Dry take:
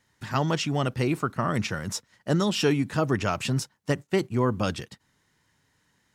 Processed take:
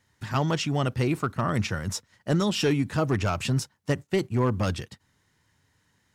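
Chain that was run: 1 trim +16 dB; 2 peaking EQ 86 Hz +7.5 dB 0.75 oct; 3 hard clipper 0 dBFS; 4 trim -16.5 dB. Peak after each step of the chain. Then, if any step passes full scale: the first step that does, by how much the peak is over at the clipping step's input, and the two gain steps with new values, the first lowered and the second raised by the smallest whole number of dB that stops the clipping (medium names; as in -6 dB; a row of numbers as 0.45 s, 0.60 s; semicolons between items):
+5.0 dBFS, +6.0 dBFS, 0.0 dBFS, -16.5 dBFS; step 1, 6.0 dB; step 1 +10 dB, step 4 -10.5 dB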